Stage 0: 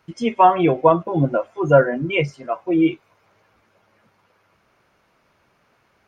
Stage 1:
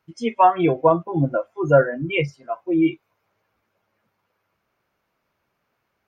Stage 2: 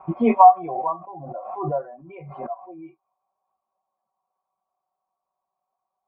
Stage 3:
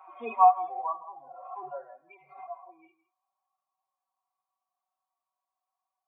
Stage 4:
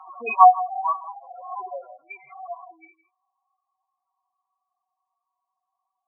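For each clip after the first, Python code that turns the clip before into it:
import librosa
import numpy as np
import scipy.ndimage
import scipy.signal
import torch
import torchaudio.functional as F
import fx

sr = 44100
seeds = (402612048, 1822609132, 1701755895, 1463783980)

y1 = fx.noise_reduce_blind(x, sr, reduce_db=10)
y1 = y1 * librosa.db_to_amplitude(-1.5)
y2 = fx.formant_cascade(y1, sr, vowel='a')
y2 = y2 + 0.59 * np.pad(y2, (int(5.3 * sr / 1000.0), 0))[:len(y2)]
y2 = fx.pre_swell(y2, sr, db_per_s=44.0)
y2 = y2 * librosa.db_to_amplitude(1.5)
y3 = fx.hpss_only(y2, sr, part='harmonic')
y3 = scipy.signal.sosfilt(scipy.signal.butter(2, 1100.0, 'highpass', fs=sr, output='sos'), y3)
y3 = y3 + 10.0 ** (-16.5 / 20.0) * np.pad(y3, (int(162 * sr / 1000.0), 0))[:len(y3)]
y4 = fx.spec_gate(y3, sr, threshold_db=-10, keep='strong')
y4 = fx.peak_eq(y4, sr, hz=2100.0, db=13.5, octaves=1.8)
y4 = y4 * librosa.db_to_amplitude(3.0)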